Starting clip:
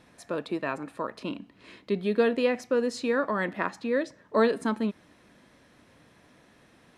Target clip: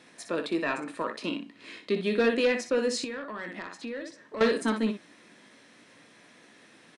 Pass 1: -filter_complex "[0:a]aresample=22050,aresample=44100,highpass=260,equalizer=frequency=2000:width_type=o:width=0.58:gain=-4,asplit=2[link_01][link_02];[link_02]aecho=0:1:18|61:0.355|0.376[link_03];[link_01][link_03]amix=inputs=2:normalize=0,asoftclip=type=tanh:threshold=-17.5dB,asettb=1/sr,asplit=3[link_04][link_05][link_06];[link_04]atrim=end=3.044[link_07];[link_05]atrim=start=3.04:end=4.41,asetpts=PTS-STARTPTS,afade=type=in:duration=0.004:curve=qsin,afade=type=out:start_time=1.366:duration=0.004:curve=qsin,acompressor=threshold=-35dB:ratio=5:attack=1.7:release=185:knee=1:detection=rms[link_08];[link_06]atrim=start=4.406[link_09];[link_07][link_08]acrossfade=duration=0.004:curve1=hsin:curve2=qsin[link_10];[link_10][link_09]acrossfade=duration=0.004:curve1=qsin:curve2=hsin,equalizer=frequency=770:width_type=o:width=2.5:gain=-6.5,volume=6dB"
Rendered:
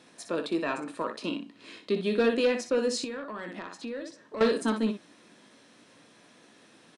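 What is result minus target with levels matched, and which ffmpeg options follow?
2,000 Hz band −3.0 dB
-filter_complex "[0:a]aresample=22050,aresample=44100,highpass=260,equalizer=frequency=2000:width_type=o:width=0.58:gain=2.5,asplit=2[link_01][link_02];[link_02]aecho=0:1:18|61:0.355|0.376[link_03];[link_01][link_03]amix=inputs=2:normalize=0,asoftclip=type=tanh:threshold=-17.5dB,asettb=1/sr,asplit=3[link_04][link_05][link_06];[link_04]atrim=end=3.044[link_07];[link_05]atrim=start=3.04:end=4.41,asetpts=PTS-STARTPTS,afade=type=in:duration=0.004:curve=qsin,afade=type=out:start_time=1.366:duration=0.004:curve=qsin,acompressor=threshold=-35dB:ratio=5:attack=1.7:release=185:knee=1:detection=rms[link_08];[link_06]atrim=start=4.406[link_09];[link_07][link_08]acrossfade=duration=0.004:curve1=hsin:curve2=qsin[link_10];[link_10][link_09]acrossfade=duration=0.004:curve1=qsin:curve2=hsin,equalizer=frequency=770:width_type=o:width=2.5:gain=-6.5,volume=6dB"

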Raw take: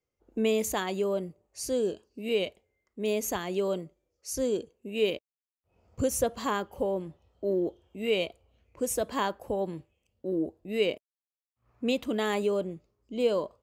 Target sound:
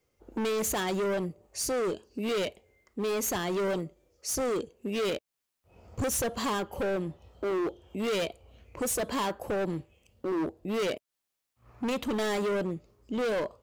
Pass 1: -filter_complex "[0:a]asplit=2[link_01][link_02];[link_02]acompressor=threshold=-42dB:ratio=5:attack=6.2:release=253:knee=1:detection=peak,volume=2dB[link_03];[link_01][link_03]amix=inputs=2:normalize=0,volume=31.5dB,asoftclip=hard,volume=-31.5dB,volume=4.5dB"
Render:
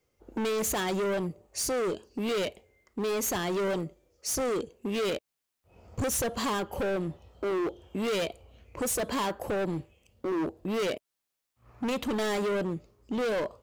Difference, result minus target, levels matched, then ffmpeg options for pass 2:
downward compressor: peak gain reduction −9 dB
-filter_complex "[0:a]asplit=2[link_01][link_02];[link_02]acompressor=threshold=-53.5dB:ratio=5:attack=6.2:release=253:knee=1:detection=peak,volume=2dB[link_03];[link_01][link_03]amix=inputs=2:normalize=0,volume=31.5dB,asoftclip=hard,volume=-31.5dB,volume=4.5dB"

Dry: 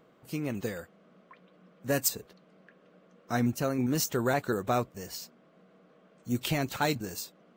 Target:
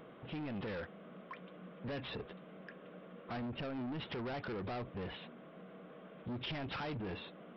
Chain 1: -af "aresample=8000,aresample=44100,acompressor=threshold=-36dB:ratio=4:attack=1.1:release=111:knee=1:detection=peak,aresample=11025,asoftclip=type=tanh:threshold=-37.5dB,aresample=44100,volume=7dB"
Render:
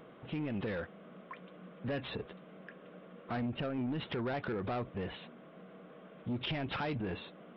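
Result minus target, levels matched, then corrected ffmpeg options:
soft clipping: distortion −6 dB
-af "aresample=8000,aresample=44100,acompressor=threshold=-36dB:ratio=4:attack=1.1:release=111:knee=1:detection=peak,aresample=11025,asoftclip=type=tanh:threshold=-45dB,aresample=44100,volume=7dB"

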